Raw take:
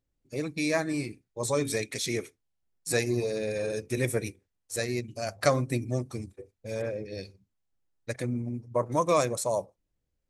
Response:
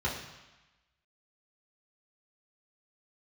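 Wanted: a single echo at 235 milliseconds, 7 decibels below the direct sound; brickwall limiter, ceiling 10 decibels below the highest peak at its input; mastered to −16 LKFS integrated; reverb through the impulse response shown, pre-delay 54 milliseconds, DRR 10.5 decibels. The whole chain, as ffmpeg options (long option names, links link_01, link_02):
-filter_complex "[0:a]alimiter=limit=-18.5dB:level=0:latency=1,aecho=1:1:235:0.447,asplit=2[link_01][link_02];[1:a]atrim=start_sample=2205,adelay=54[link_03];[link_02][link_03]afir=irnorm=-1:irlink=0,volume=-18.5dB[link_04];[link_01][link_04]amix=inputs=2:normalize=0,volume=15dB"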